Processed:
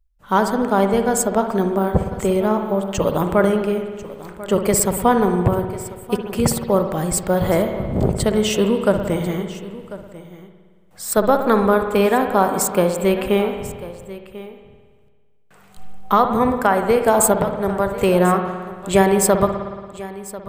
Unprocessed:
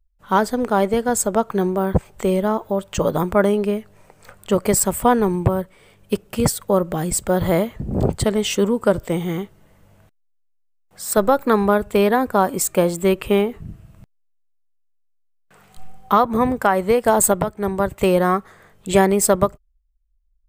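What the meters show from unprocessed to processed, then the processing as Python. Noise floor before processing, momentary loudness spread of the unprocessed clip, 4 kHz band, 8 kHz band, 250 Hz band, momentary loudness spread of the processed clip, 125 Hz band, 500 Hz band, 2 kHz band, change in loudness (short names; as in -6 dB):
-64 dBFS, 8 LU, +0.5 dB, 0.0 dB, +1.0 dB, 16 LU, +1.0 dB, +1.0 dB, +1.0 dB, +1.0 dB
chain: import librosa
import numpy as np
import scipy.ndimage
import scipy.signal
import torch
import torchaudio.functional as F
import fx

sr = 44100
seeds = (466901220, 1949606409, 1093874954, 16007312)

y = x + 10.0 ** (-17.0 / 20.0) * np.pad(x, (int(1043 * sr / 1000.0), 0))[:len(x)]
y = fx.rev_spring(y, sr, rt60_s=1.6, pass_ms=(56,), chirp_ms=25, drr_db=6.0)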